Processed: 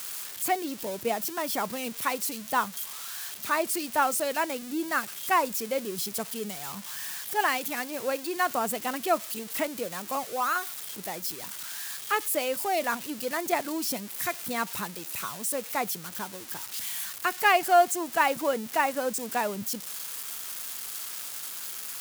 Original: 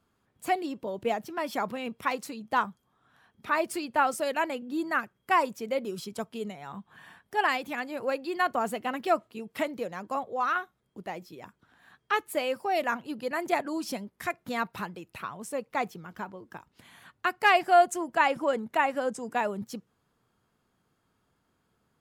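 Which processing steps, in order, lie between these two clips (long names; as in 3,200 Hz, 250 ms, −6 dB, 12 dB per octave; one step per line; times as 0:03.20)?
spike at every zero crossing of −25.5 dBFS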